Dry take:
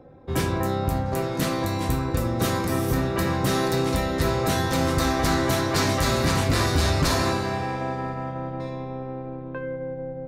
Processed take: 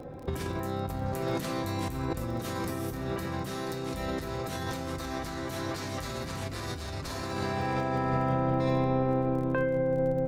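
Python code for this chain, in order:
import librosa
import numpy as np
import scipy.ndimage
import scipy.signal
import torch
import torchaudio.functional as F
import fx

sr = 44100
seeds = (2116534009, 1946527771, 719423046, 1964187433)

p1 = fx.over_compress(x, sr, threshold_db=-32.0, ratio=-1.0)
p2 = fx.dmg_crackle(p1, sr, seeds[0], per_s=31.0, level_db=-40.0)
y = p2 + fx.echo_single(p2, sr, ms=133, db=-21.0, dry=0)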